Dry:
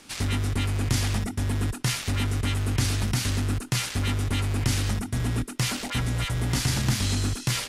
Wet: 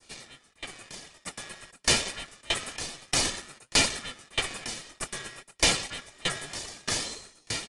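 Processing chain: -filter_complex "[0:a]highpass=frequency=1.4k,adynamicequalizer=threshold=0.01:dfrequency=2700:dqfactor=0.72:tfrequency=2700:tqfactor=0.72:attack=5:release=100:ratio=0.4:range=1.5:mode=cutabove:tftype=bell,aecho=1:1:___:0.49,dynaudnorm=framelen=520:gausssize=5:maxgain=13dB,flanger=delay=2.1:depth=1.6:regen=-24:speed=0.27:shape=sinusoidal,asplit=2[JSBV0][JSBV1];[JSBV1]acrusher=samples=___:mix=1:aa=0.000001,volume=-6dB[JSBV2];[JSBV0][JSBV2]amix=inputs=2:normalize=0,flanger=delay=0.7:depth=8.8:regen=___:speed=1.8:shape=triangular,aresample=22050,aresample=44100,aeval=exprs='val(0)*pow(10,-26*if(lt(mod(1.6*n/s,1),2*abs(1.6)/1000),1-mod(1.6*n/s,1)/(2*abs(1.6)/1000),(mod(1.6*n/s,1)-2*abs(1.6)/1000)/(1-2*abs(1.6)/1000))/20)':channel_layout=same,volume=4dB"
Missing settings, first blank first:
1.7, 29, 52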